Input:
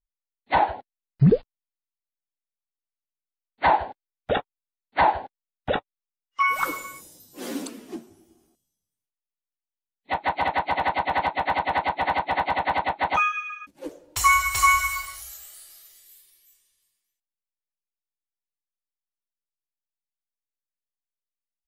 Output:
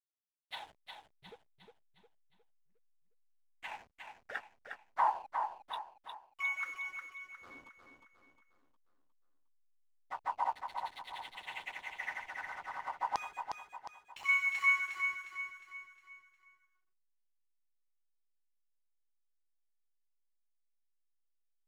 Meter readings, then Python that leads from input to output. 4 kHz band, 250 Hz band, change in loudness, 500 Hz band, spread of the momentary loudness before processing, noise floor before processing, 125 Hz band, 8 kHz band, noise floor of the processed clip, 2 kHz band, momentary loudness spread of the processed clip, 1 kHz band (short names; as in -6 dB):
-14.5 dB, under -30 dB, -13.0 dB, -24.5 dB, 20 LU, under -85 dBFS, under -40 dB, -25.5 dB, -78 dBFS, -9.0 dB, 21 LU, -15.5 dB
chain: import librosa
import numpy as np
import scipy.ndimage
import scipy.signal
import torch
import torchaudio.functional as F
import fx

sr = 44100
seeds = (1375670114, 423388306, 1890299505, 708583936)

y = fx.tremolo_random(x, sr, seeds[0], hz=3.5, depth_pct=55)
y = fx.filter_lfo_bandpass(y, sr, shape='saw_down', hz=0.38, low_hz=930.0, high_hz=5300.0, q=4.5)
y = fx.backlash(y, sr, play_db=-45.5)
y = fx.echo_feedback(y, sr, ms=358, feedback_pct=45, wet_db=-6)
y = y * 10.0 ** (-3.0 / 20.0)